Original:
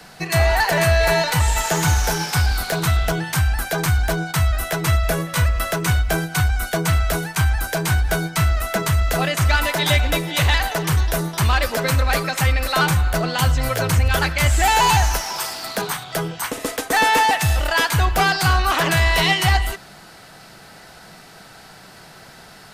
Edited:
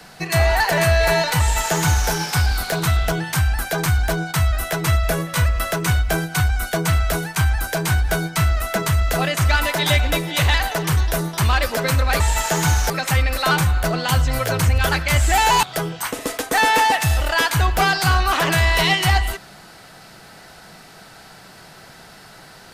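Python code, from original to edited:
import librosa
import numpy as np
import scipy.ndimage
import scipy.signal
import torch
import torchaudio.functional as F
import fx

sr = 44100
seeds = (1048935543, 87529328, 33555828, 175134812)

y = fx.edit(x, sr, fx.duplicate(start_s=1.4, length_s=0.7, to_s=12.2),
    fx.cut(start_s=14.93, length_s=1.09), tone=tone)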